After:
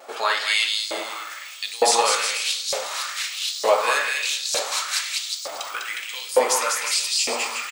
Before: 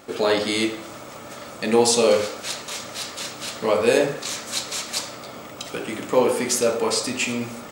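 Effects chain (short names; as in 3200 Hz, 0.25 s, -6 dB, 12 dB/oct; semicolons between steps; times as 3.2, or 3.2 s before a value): bouncing-ball echo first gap 0.2 s, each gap 0.8×, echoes 5; vibrato 0.49 Hz 13 cents; LFO high-pass saw up 1.1 Hz 580–5100 Hz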